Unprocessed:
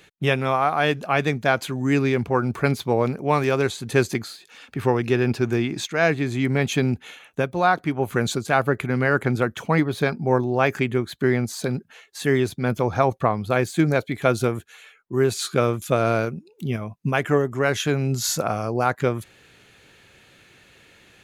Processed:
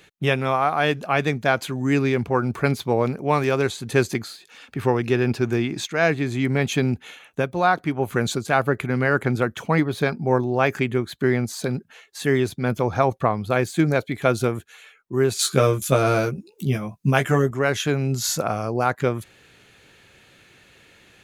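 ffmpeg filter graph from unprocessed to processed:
-filter_complex "[0:a]asettb=1/sr,asplit=3[a][b][c];[a]atrim=end=15.394[d];[b]atrim=start=15.39:end=17.51,asetpts=PTS-STARTPTS,afade=t=in:d=0.004:c=qsin,afade=t=out:st=2.116:d=0.004:c=qsin,bass=f=250:g=2,treble=f=4k:g=7,asplit=2[e][f];[f]adelay=15,volume=-4dB[g];[e][g]amix=inputs=2:normalize=0,atrim=end_sample=93492[h];[c]atrim=start=17.506[i];[d][h]acrossfade=d=0.004:c1=hsin:c2=qsin[j];[j][i]acrossfade=d=0.004:c1=qsin:c2=hsin"

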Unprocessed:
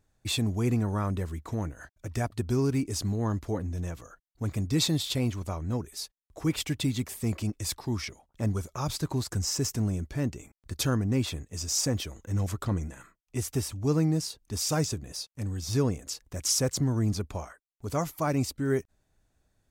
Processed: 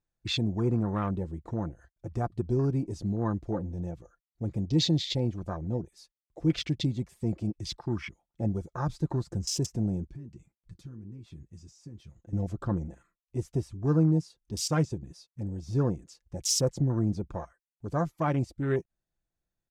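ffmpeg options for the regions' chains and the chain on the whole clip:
-filter_complex "[0:a]asettb=1/sr,asplit=3[a][b][c];[a]atrim=end=10.074[d];[b]atrim=start=10.07:end=12.33,asetpts=PTS-STARTPTS,afade=t=in:d=0.004:c=qsin,afade=t=out:st=2.256:d=0.004:c=qsin,acompressor=threshold=-34dB:ratio=16:attack=3.2:release=140:knee=1:detection=peak,flanger=delay=6:depth=2.9:regen=-63:speed=1.8:shape=triangular[e];[c]atrim=start=12.326[f];[d][e]acrossfade=d=0.004:c1=hsin:c2=qsin[g];[g][f]acrossfade=d=0.004:c1=qsin:c2=hsin,lowpass=8.4k,afwtdn=0.0126,aecho=1:1:5.8:0.39"

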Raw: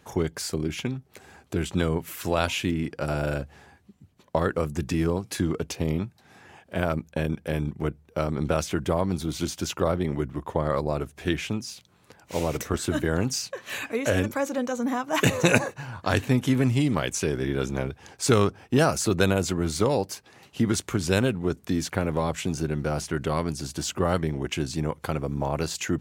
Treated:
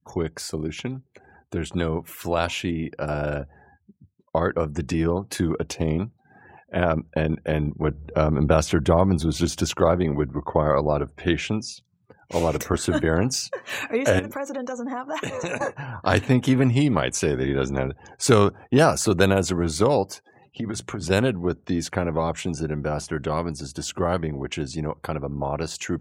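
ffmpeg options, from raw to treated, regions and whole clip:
-filter_complex "[0:a]asettb=1/sr,asplit=3[a][b][c];[a]atrim=end=7.894[d];[b]atrim=start=7.89:end=9.74,asetpts=PTS-STARTPTS,afade=t=in:d=0.004:c=qsin,afade=t=out:st=1.846:d=0.004:c=qsin,lowshelf=f=170:g=5.5,acompressor=mode=upward:threshold=-28dB:ratio=2.5:attack=3.2:release=140:knee=2.83:detection=peak[e];[c]atrim=start=9.736[f];[d][e]acrossfade=d=0.004:c1=hsin:c2=qsin[g];[g][f]acrossfade=d=0.004:c1=qsin:c2=hsin,asettb=1/sr,asplit=3[h][i][j];[h]atrim=end=14.194[k];[i]atrim=start=14.19:end=15.61,asetpts=PTS-STARTPTS,afade=t=in:d=0.004:c=qsin,afade=t=out:st=1.416:d=0.004:c=qsin,equalizer=f=79:t=o:w=2.7:g=-5,acompressor=threshold=-32dB:ratio=3:attack=3.2:release=140:knee=1:detection=peak[l];[j]atrim=start=15.606[m];[k][l]acrossfade=d=0.004:c1=hsin:c2=qsin[n];[n][m]acrossfade=d=0.004:c1=qsin:c2=hsin,asettb=1/sr,asplit=3[o][p][q];[o]atrim=end=20.104[r];[p]atrim=start=20.1:end=21.1,asetpts=PTS-STARTPTS,afade=t=in:d=0.004:c=qsin,afade=t=out:st=0.996:d=0.004:c=qsin,highshelf=f=3.8k:g=-3,bandreject=f=60:t=h:w=6,bandreject=f=120:t=h:w=6,bandreject=f=180:t=h:w=6,acompressor=threshold=-26dB:ratio=10:attack=3.2:release=140:knee=1:detection=peak[s];[q]atrim=start=21.096[t];[r][s]acrossfade=d=0.004:c1=hsin:c2=qsin[u];[u][t]acrossfade=d=0.004:c1=qsin:c2=hsin,adynamicequalizer=threshold=0.0112:dfrequency=730:dqfactor=0.82:tfrequency=730:tqfactor=0.82:attack=5:release=100:ratio=0.375:range=1.5:mode=boostabove:tftype=bell,afftdn=nr=34:nf=-48,dynaudnorm=f=530:g=21:m=11.5dB,volume=-1dB"

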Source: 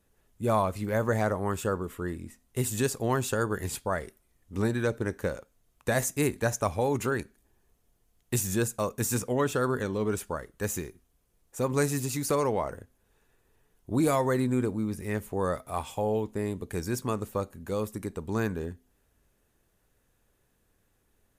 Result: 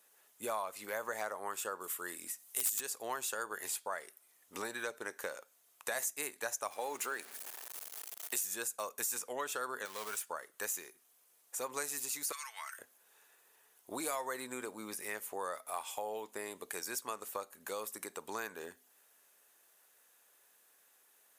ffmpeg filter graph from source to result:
-filter_complex "[0:a]asettb=1/sr,asplit=3[a][b][c];[a]atrim=end=1.804[d];[b]atrim=start=1.8:end=2.81,asetpts=PTS-STARTPTS,afade=t=in:d=0.004:c=qsin,afade=t=out:st=1.006:d=0.004:c=qsin,highshelf=f=4.4k:g=12,aeval=exprs='(mod(5.01*val(0)+1,2)-1)/5.01':c=same[e];[c]atrim=start=2.806[f];[d][e]acrossfade=d=0.004:c1=hsin:c2=qsin[g];[g][f]acrossfade=d=0.004:c1=qsin:c2=hsin,asettb=1/sr,asplit=3[h][i][j];[h]atrim=end=6.714[k];[i]atrim=start=6.71:end=8.45,asetpts=PTS-STARTPTS,afade=t=in:d=0.004:c=qsin,afade=t=out:st=1.736:d=0.004:c=qsin,aeval=exprs='val(0)+0.5*0.00708*sgn(val(0))':c=same,highpass=170[l];[j]atrim=start=8.446[m];[k][l]acrossfade=d=0.004:c1=hsin:c2=qsin[n];[n][m]acrossfade=d=0.004:c1=qsin:c2=hsin,asettb=1/sr,asplit=3[o][p][q];[o]atrim=end=9.854[r];[p]atrim=start=9.85:end=10.28,asetpts=PTS-STARTPTS,afade=t=in:d=0.004:c=qsin,afade=t=out:st=0.426:d=0.004:c=qsin,highpass=43,equalizer=f=320:w=1.1:g=-11,acrusher=bits=3:mode=log:mix=0:aa=0.000001[s];[q]atrim=start=10.276[t];[r][s]acrossfade=d=0.004:c1=hsin:c2=qsin[u];[u][t]acrossfade=d=0.004:c1=qsin:c2=hsin,asettb=1/sr,asplit=3[v][w][x];[v]atrim=end=12.324[y];[w]atrim=start=12.32:end=12.79,asetpts=PTS-STARTPTS,afade=t=in:d=0.004:c=qsin,afade=t=out:st=0.466:d=0.004:c=qsin,highpass=f=1.5k:w=0.5412,highpass=f=1.5k:w=1.3066,aecho=1:1:4.5:0.46,atrim=end_sample=20727[z];[x]atrim=start=12.786[aa];[y][z]acrossfade=d=0.004:c1=hsin:c2=qsin[ab];[ab][aa]acrossfade=d=0.004:c1=qsin:c2=hsin,highpass=730,highshelf=f=7k:g=7.5,acompressor=threshold=-46dB:ratio=2.5,volume=5dB"

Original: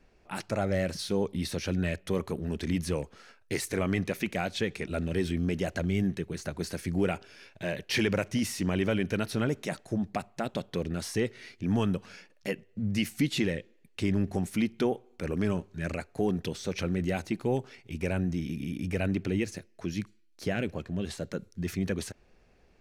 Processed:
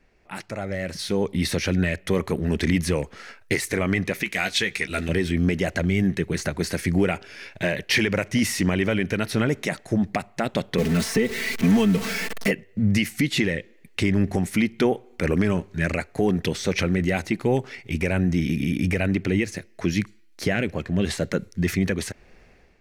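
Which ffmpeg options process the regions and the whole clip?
-filter_complex "[0:a]asettb=1/sr,asplit=3[a][b][c];[a]atrim=end=4.234[d];[b]atrim=start=4.23:end=5.09,asetpts=PTS-STARTPTS,afade=t=in:d=0.004:c=qsin,afade=t=out:st=0.856:d=0.004:c=qsin,tiltshelf=f=1.3k:g=-6,bandreject=f=570:w=10,asplit=2[e][f];[f]adelay=15,volume=-9dB[g];[e][g]amix=inputs=2:normalize=0,atrim=end_sample=37926[h];[c]atrim=start=5.086[i];[d][h]acrossfade=d=0.004:c1=hsin:c2=qsin[j];[j][i]acrossfade=d=0.004:c1=qsin:c2=hsin,asettb=1/sr,asplit=3[k][l][m];[k]atrim=end=10.784[n];[l]atrim=start=10.78:end=12.51,asetpts=PTS-STARTPTS,afade=t=in:d=0.004:c=qsin,afade=t=out:st=1.726:d=0.004:c=qsin,aeval=exprs='val(0)+0.5*0.0178*sgn(val(0))':c=same,aecho=1:1:4.5:0.84,atrim=end_sample=76293,acrossover=split=110|590|2300[o][p][q][r];[o]acompressor=threshold=-44dB:ratio=3[s];[p]acompressor=threshold=-26dB:ratio=3[t];[q]acompressor=threshold=-46dB:ratio=3[u];[r]acompressor=threshold=-42dB:ratio=3[v];[s][t][u][v]amix=inputs=4:normalize=0[w];[m]atrim=start=12.506[x];[n][w]acrossfade=d=0.004:c1=hsin:c2=qsin[y];[y][x]acrossfade=d=0.004:c1=qsin:c2=hsin,equalizer=f=2k:t=o:w=0.48:g=7,alimiter=limit=-21dB:level=0:latency=1:release=412,dynaudnorm=f=680:g=3:m=10.5dB"

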